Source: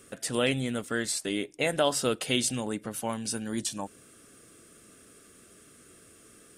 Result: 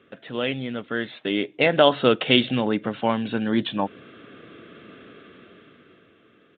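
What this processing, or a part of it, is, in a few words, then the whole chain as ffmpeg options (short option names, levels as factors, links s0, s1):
Bluetooth headset: -af "highpass=120,dynaudnorm=f=200:g=13:m=5.01,aresample=8000,aresample=44100" -ar 16000 -c:a sbc -b:a 64k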